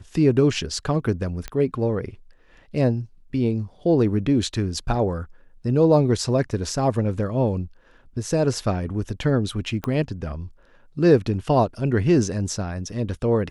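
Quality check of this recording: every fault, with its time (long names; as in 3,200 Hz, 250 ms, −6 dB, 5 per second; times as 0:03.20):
0:01.48: click −15 dBFS
0:09.84: click −14 dBFS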